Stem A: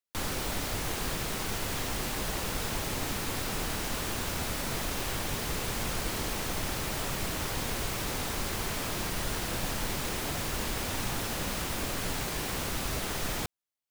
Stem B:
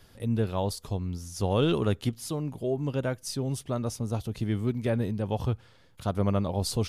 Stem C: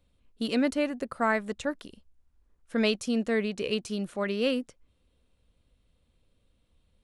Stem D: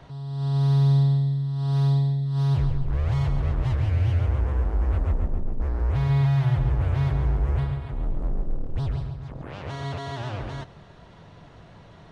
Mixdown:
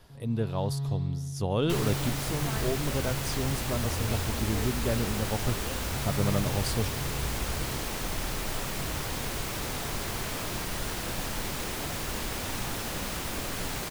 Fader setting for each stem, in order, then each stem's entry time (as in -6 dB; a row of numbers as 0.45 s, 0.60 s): -0.5 dB, -2.5 dB, -15.5 dB, -13.0 dB; 1.55 s, 0.00 s, 1.25 s, 0.00 s